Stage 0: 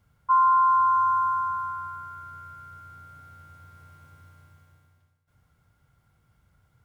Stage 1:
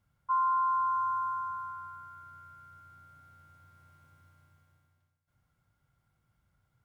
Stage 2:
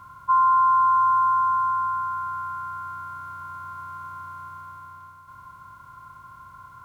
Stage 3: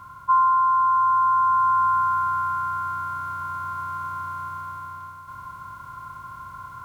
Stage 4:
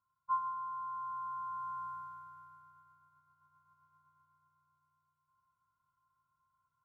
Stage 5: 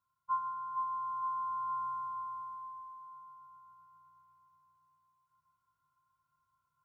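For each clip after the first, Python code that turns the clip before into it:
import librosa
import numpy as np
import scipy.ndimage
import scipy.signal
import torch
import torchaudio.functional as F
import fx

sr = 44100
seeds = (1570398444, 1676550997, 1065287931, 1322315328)

y1 = fx.peak_eq(x, sr, hz=76.0, db=-7.5, octaves=0.27)
y1 = fx.notch(y1, sr, hz=450.0, q=12.0)
y1 = y1 * 10.0 ** (-8.5 / 20.0)
y2 = fx.bin_compress(y1, sr, power=0.4)
y2 = y2 * 10.0 ** (9.0 / 20.0)
y3 = fx.rider(y2, sr, range_db=4, speed_s=0.5)
y3 = y3 * 10.0 ** (2.5 / 20.0)
y4 = fx.comb_fb(y3, sr, f0_hz=150.0, decay_s=0.62, harmonics='odd', damping=0.0, mix_pct=70)
y4 = fx.upward_expand(y4, sr, threshold_db=-41.0, expansion=2.5)
y4 = y4 * 10.0 ** (-6.5 / 20.0)
y5 = fx.echo_feedback(y4, sr, ms=464, feedback_pct=48, wet_db=-7.0)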